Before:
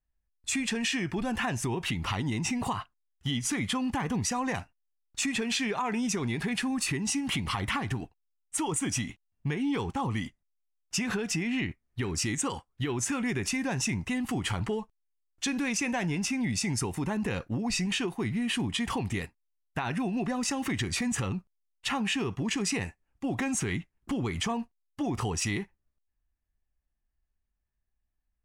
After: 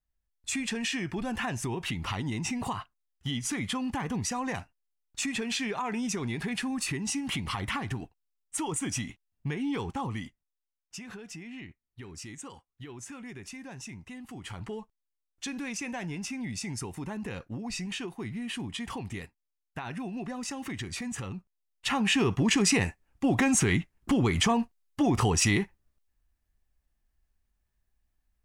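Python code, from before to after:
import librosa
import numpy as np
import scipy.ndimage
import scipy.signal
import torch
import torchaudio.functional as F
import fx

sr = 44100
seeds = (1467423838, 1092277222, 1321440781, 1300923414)

y = fx.gain(x, sr, db=fx.line((9.96, -2.0), (11.03, -13.0), (14.3, -13.0), (14.78, -6.0), (21.33, -6.0), (22.25, 6.0)))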